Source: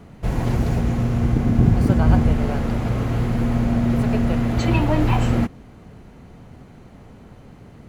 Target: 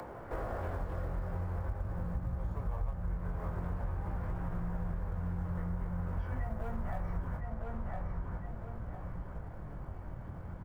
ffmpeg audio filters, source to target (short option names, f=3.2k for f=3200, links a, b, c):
-filter_complex "[0:a]acrossover=split=530 2200:gain=0.1 1 0.0708[a][b][c];[a][b][c]amix=inputs=3:normalize=0,acrossover=split=140|880|2600[d][e][f][g];[e]asoftclip=type=tanh:threshold=-34dB[h];[g]alimiter=level_in=20.5dB:limit=-24dB:level=0:latency=1:release=480,volume=-20.5dB[i];[d][h][f][i]amix=inputs=4:normalize=0,asetrate=32667,aresample=44100,flanger=delay=17:depth=6.4:speed=0.44,acrusher=bits=8:mode=log:mix=0:aa=0.000001,asubboost=boost=10:cutoff=130,acompressor=mode=upward:threshold=-43dB:ratio=2.5,asplit=2[j][k];[k]adelay=1009,lowpass=f=4k:p=1,volume=-11dB,asplit=2[l][m];[m]adelay=1009,lowpass=f=4k:p=1,volume=0.26,asplit=2[n][o];[o]adelay=1009,lowpass=f=4k:p=1,volume=0.26[p];[j][l][n][p]amix=inputs=4:normalize=0,acompressor=threshold=-39dB:ratio=6,volume=5.5dB"